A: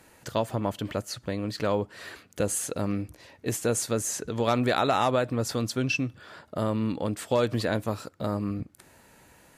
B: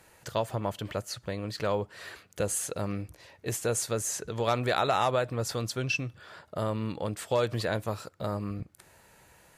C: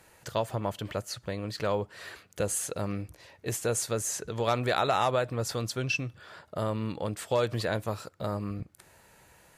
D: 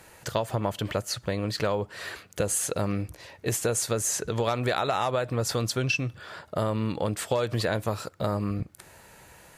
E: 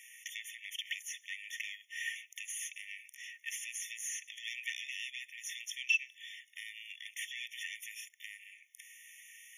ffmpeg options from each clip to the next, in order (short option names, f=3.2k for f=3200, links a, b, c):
-af "equalizer=f=260:t=o:w=0.6:g=-9,volume=-1.5dB"
-af anull
-af "acompressor=threshold=-29dB:ratio=6,volume=6.5dB"
-filter_complex "[0:a]acrossover=split=3200[a][b];[b]acompressor=threshold=-40dB:ratio=4:attack=1:release=60[c];[a][c]amix=inputs=2:normalize=0,asoftclip=type=tanh:threshold=-22.5dB,afftfilt=real='re*eq(mod(floor(b*sr/1024/1800),2),1)':imag='im*eq(mod(floor(b*sr/1024/1800),2),1)':win_size=1024:overlap=0.75,volume=2.5dB"